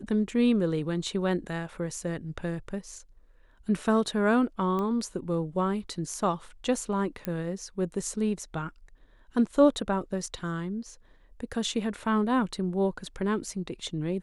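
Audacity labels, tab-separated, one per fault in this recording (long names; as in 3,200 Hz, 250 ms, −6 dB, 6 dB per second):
4.790000	4.790000	click −21 dBFS
7.250000	7.250000	click −16 dBFS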